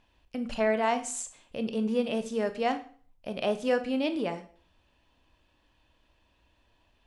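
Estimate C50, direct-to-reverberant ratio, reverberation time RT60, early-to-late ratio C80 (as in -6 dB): 13.5 dB, 9.0 dB, 0.45 s, 17.5 dB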